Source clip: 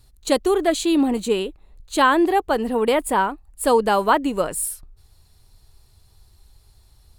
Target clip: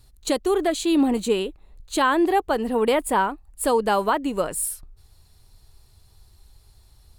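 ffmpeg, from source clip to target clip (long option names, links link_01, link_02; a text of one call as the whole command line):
ffmpeg -i in.wav -af "alimiter=limit=-10.5dB:level=0:latency=1:release=388" out.wav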